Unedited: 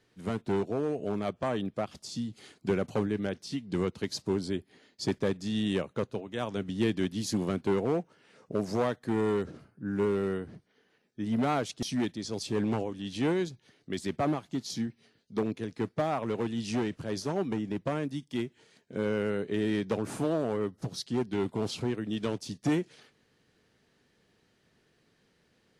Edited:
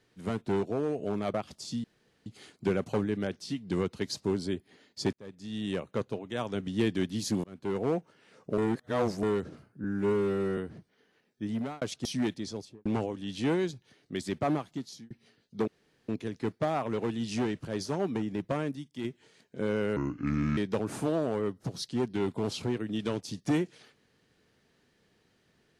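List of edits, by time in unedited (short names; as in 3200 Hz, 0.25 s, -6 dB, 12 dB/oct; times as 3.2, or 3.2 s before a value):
1.34–1.78 cut
2.28 insert room tone 0.42 s
5.15–6.02 fade in
7.46–7.92 fade in linear
8.6–9.25 reverse
9.86–10.35 stretch 1.5×
11.22–11.59 fade out
12.18–12.63 studio fade out
14.4–14.88 fade out
15.45 insert room tone 0.41 s
18.12–18.41 gain -5 dB
19.33–19.75 speed 69%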